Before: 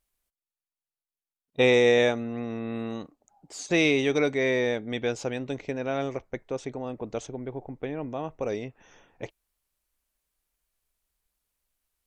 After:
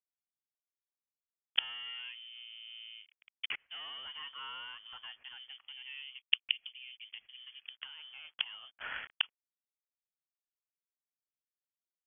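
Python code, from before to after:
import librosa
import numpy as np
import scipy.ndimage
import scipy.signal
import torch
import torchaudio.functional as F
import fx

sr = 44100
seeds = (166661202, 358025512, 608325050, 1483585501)

p1 = fx.highpass(x, sr, hz=58.0, slope=6)
p2 = fx.peak_eq(p1, sr, hz=580.0, db=-4.0, octaves=0.97)
p3 = fx.rider(p2, sr, range_db=4, speed_s=2.0)
p4 = p2 + F.gain(torch.from_numpy(p3), -2.0).numpy()
p5 = fx.quant_dither(p4, sr, seeds[0], bits=8, dither='none')
p6 = fx.leveller(p5, sr, passes=3)
p7 = fx.gate_flip(p6, sr, shuts_db=-15.0, range_db=-36)
p8 = fx.filter_lfo_lowpass(p7, sr, shape='sine', hz=0.27, low_hz=900.0, high_hz=2100.0, q=2.1)
p9 = fx.freq_invert(p8, sr, carrier_hz=3300)
y = F.gain(torch.from_numpy(p9), 2.5).numpy()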